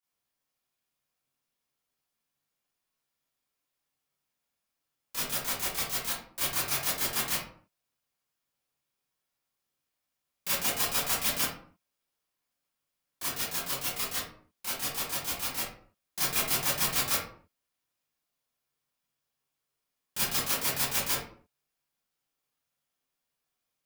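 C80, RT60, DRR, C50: 5.5 dB, 0.55 s, -11.5 dB, 0.5 dB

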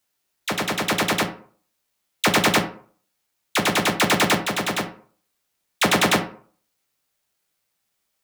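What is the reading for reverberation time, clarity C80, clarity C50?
0.50 s, 15.5 dB, 11.5 dB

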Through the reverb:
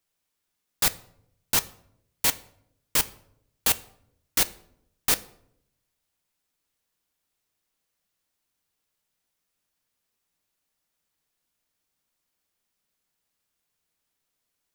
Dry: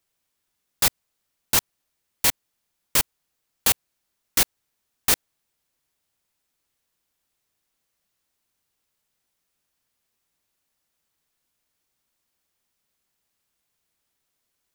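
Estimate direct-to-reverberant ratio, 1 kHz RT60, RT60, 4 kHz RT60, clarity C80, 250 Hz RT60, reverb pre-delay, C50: 11.5 dB, 0.65 s, 0.75 s, 0.45 s, 22.0 dB, 1.0 s, 4 ms, 19.0 dB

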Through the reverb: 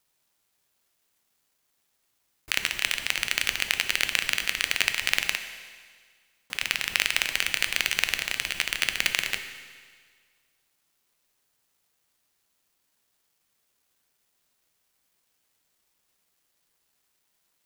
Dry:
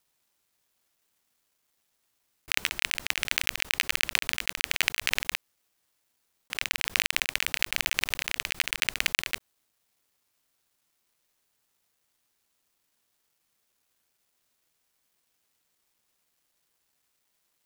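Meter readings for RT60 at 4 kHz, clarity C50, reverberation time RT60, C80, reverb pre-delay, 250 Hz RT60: 1.7 s, 9.5 dB, 1.7 s, 10.5 dB, 8 ms, 1.7 s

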